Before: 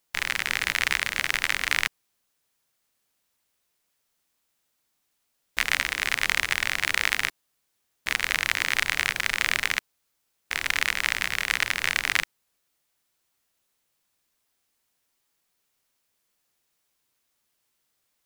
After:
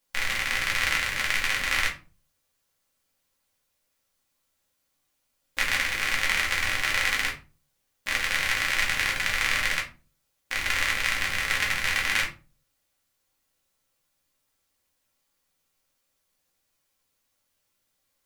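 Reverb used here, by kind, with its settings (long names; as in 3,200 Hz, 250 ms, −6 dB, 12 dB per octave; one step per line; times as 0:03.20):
rectangular room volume 150 cubic metres, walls furnished, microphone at 2.3 metres
level −4.5 dB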